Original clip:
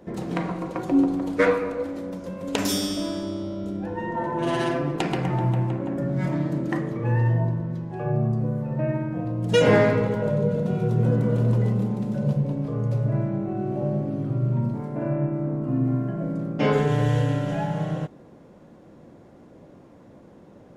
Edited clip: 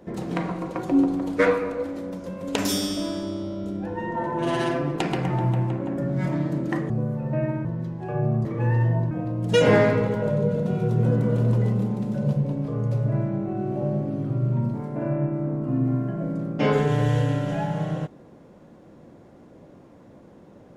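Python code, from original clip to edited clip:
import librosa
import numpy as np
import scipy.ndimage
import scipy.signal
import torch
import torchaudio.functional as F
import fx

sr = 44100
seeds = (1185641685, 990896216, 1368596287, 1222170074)

y = fx.edit(x, sr, fx.swap(start_s=6.9, length_s=0.66, other_s=8.36, other_length_s=0.75), tone=tone)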